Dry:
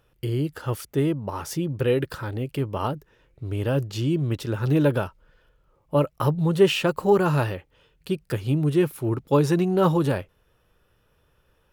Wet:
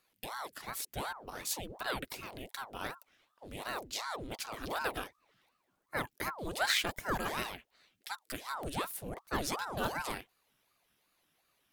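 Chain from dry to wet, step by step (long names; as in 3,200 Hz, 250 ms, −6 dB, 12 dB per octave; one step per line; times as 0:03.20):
tilt shelving filter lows −9.5 dB, about 1,500 Hz
ring modulator whose carrier an LFO sweeps 690 Hz, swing 80%, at 2.7 Hz
level −6 dB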